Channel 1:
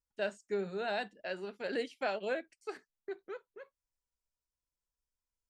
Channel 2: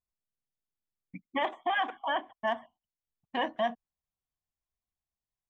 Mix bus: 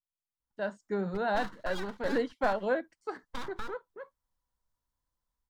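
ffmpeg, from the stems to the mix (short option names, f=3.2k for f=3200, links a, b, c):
-filter_complex "[0:a]lowpass=f=1.2k:p=1,adelay=400,volume=-2dB[a];[1:a]acompressor=threshold=-35dB:ratio=6,aeval=exprs='abs(val(0))':c=same,volume=-9.5dB[b];[a][b]amix=inputs=2:normalize=0,equalizer=f=400:t=o:w=0.33:g=-8,equalizer=f=630:t=o:w=0.33:g=-4,equalizer=f=1k:t=o:w=0.33:g=5,equalizer=f=2.5k:t=o:w=0.33:g=-12,dynaudnorm=f=140:g=9:m=11.5dB"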